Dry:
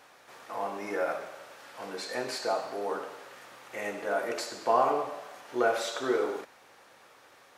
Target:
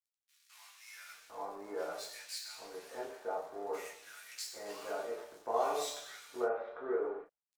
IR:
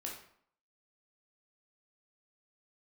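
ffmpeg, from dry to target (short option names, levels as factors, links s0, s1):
-filter_complex "[0:a]aeval=exprs='sgn(val(0))*max(abs(val(0))-0.00447,0)':c=same,bass=f=250:g=-4,treble=f=4000:g=8,acrossover=split=1700[s0][s1];[s0]adelay=800[s2];[s2][s1]amix=inputs=2:normalize=0[s3];[1:a]atrim=start_sample=2205,atrim=end_sample=3087,asetrate=61740,aresample=44100[s4];[s3][s4]afir=irnorm=-1:irlink=0,volume=0.75"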